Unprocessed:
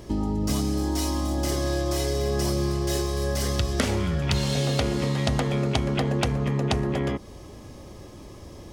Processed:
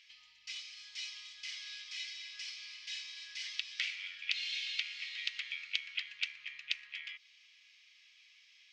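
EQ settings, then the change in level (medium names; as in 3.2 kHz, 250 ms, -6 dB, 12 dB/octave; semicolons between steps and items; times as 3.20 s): elliptic high-pass 2.3 kHz, stop band 70 dB; distance through air 150 m; tape spacing loss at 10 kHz 23 dB; +8.5 dB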